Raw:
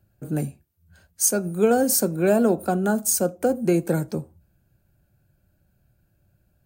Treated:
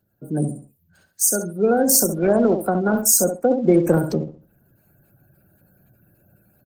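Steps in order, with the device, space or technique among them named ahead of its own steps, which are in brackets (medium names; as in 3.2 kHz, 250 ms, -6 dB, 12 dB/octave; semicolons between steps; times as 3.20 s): treble shelf 4.4 kHz +5.5 dB; feedback delay 67 ms, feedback 30%, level -8 dB; 3.08–3.65 s: expander -23 dBFS; noise-suppressed video call (high-pass 140 Hz 12 dB/octave; spectral gate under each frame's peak -25 dB strong; level rider gain up to 13 dB; trim -1.5 dB; Opus 16 kbps 48 kHz)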